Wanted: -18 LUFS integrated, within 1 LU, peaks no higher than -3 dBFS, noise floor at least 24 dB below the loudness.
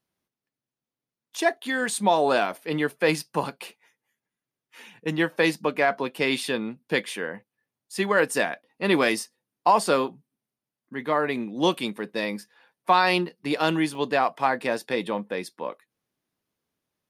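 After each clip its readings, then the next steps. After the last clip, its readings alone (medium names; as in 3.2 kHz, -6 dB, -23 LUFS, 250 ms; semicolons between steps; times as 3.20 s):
dropouts 1; longest dropout 1.4 ms; loudness -25.0 LUFS; peak level -8.0 dBFS; loudness target -18.0 LUFS
-> interpolate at 13.95 s, 1.4 ms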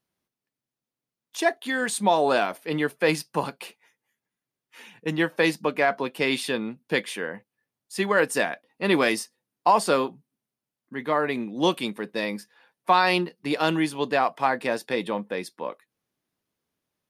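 dropouts 0; loudness -25.0 LUFS; peak level -8.0 dBFS; loudness target -18.0 LUFS
-> trim +7 dB; peak limiter -3 dBFS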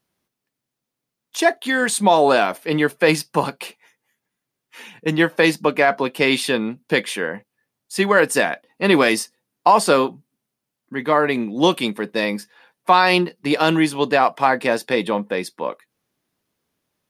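loudness -18.5 LUFS; peak level -3.0 dBFS; noise floor -82 dBFS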